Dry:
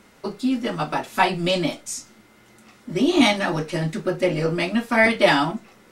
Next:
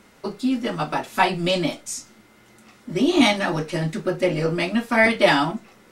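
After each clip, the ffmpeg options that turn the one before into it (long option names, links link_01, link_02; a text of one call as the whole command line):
ffmpeg -i in.wav -af anull out.wav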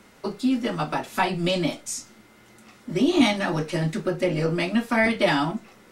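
ffmpeg -i in.wav -filter_complex "[0:a]acrossover=split=290[link_01][link_02];[link_02]acompressor=threshold=-27dB:ratio=1.5[link_03];[link_01][link_03]amix=inputs=2:normalize=0" out.wav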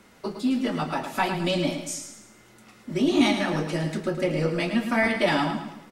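ffmpeg -i in.wav -af "aecho=1:1:109|218|327|436|545:0.398|0.171|0.0736|0.0317|0.0136,volume=-2dB" out.wav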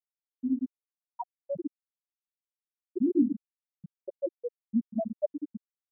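ffmpeg -i in.wav -af "aeval=exprs='val(0)+0.5*0.02*sgn(val(0))':channel_layout=same,bandreject=frequency=85.06:width_type=h:width=4,bandreject=frequency=170.12:width_type=h:width=4,bandreject=frequency=255.18:width_type=h:width=4,bandreject=frequency=340.24:width_type=h:width=4,bandreject=frequency=425.3:width_type=h:width=4,bandreject=frequency=510.36:width_type=h:width=4,bandreject=frequency=595.42:width_type=h:width=4,bandreject=frequency=680.48:width_type=h:width=4,bandreject=frequency=765.54:width_type=h:width=4,bandreject=frequency=850.6:width_type=h:width=4,bandreject=frequency=935.66:width_type=h:width=4,bandreject=frequency=1020.72:width_type=h:width=4,bandreject=frequency=1105.78:width_type=h:width=4,bandreject=frequency=1190.84:width_type=h:width=4,bandreject=frequency=1275.9:width_type=h:width=4,bandreject=frequency=1360.96:width_type=h:width=4,bandreject=frequency=1446.02:width_type=h:width=4,bandreject=frequency=1531.08:width_type=h:width=4,bandreject=frequency=1616.14:width_type=h:width=4,bandreject=frequency=1701.2:width_type=h:width=4,bandreject=frequency=1786.26:width_type=h:width=4,bandreject=frequency=1871.32:width_type=h:width=4,bandreject=frequency=1956.38:width_type=h:width=4,bandreject=frequency=2041.44:width_type=h:width=4,bandreject=frequency=2126.5:width_type=h:width=4,bandreject=frequency=2211.56:width_type=h:width=4,bandreject=frequency=2296.62:width_type=h:width=4,bandreject=frequency=2381.68:width_type=h:width=4,bandreject=frequency=2466.74:width_type=h:width=4,bandreject=frequency=2551.8:width_type=h:width=4,bandreject=frequency=2636.86:width_type=h:width=4,bandreject=frequency=2721.92:width_type=h:width=4,bandreject=frequency=2806.98:width_type=h:width=4,bandreject=frequency=2892.04:width_type=h:width=4,bandreject=frequency=2977.1:width_type=h:width=4,bandreject=frequency=3062.16:width_type=h:width=4,bandreject=frequency=3147.22:width_type=h:width=4,bandreject=frequency=3232.28:width_type=h:width=4,afftfilt=real='re*gte(hypot(re,im),0.708)':imag='im*gte(hypot(re,im),0.708)':win_size=1024:overlap=0.75,volume=-2.5dB" out.wav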